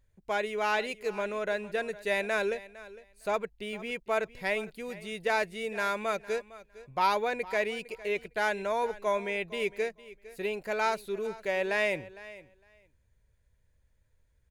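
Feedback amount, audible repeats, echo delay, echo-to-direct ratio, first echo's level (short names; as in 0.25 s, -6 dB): 15%, 2, 0.457 s, -18.0 dB, -18.0 dB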